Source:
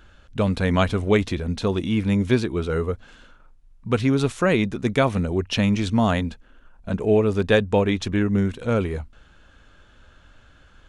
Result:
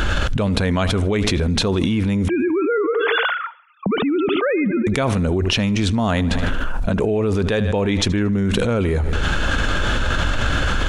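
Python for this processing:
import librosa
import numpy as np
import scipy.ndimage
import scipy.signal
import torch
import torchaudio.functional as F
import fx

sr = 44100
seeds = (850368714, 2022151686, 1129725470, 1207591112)

y = fx.sine_speech(x, sr, at=(2.28, 4.87))
y = fx.echo_feedback(y, sr, ms=76, feedback_pct=52, wet_db=-22.0)
y = fx.env_flatten(y, sr, amount_pct=100)
y = y * librosa.db_to_amplitude(-4.5)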